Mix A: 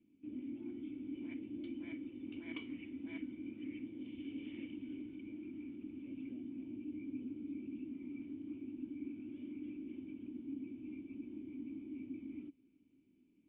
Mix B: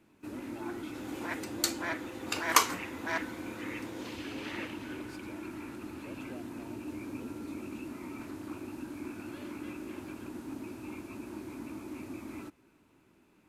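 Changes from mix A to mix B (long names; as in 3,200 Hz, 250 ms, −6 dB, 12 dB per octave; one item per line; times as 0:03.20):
second sound +6.5 dB
master: remove formant resonators in series i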